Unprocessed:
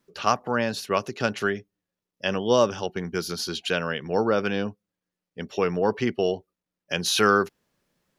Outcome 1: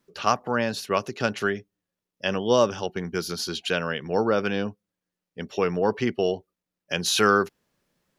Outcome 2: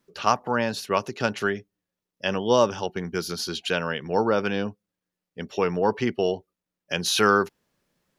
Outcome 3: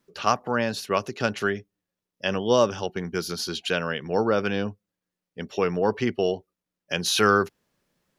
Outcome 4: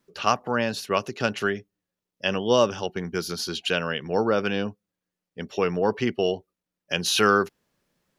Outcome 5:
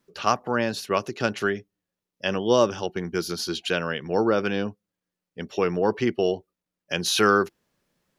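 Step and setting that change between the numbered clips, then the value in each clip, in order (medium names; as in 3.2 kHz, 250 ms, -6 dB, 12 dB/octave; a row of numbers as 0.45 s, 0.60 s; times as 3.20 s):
dynamic bell, frequency: 7.4 kHz, 910 Hz, 100 Hz, 2.8 kHz, 340 Hz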